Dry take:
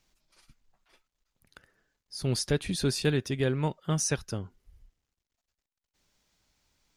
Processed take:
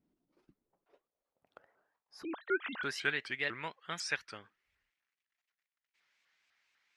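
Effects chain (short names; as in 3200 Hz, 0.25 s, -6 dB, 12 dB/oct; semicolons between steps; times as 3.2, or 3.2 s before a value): 2.24–2.83 sine-wave speech; band-pass sweep 280 Hz -> 2000 Hz, 0.23–3.18; shaped vibrato saw up 4 Hz, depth 250 cents; gain +6.5 dB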